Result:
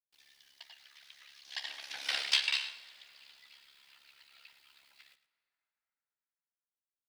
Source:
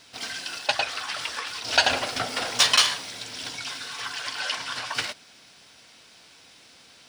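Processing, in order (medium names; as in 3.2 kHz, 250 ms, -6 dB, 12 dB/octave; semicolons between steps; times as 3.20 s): Doppler pass-by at 2.16 s, 41 m/s, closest 3.5 m; high-pass 1.1 kHz 6 dB/octave; high-order bell 2.9 kHz +9 dB; word length cut 10-bit, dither none; AM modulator 69 Hz, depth 50%; on a send: delay 106 ms -14.5 dB; on the sum: plate-style reverb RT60 4.2 s, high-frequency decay 0.45×, DRR 18 dB; trim -6 dB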